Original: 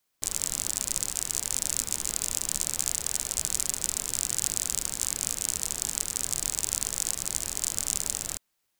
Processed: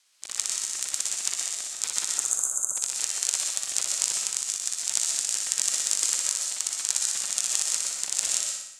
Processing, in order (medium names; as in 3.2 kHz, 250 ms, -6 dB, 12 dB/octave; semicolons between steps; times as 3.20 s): frequency weighting ITU-R 468; spectral selection erased 2.14–2.77 s, 1.6–6.2 kHz; treble shelf 5.7 kHz -6.5 dB; compressor with a negative ratio -31 dBFS, ratio -0.5; flutter echo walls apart 10.4 m, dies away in 0.8 s; reverberation RT60 0.40 s, pre-delay 90 ms, DRR 2 dB; trim -1 dB